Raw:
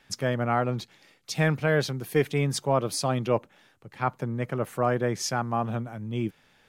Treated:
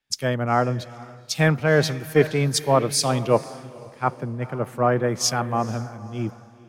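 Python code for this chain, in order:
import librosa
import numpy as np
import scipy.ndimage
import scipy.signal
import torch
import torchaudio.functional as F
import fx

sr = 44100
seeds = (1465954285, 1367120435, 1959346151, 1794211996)

y = fx.echo_diffused(x, sr, ms=481, feedback_pct=41, wet_db=-12)
y = fx.band_widen(y, sr, depth_pct=70)
y = y * librosa.db_to_amplitude(4.0)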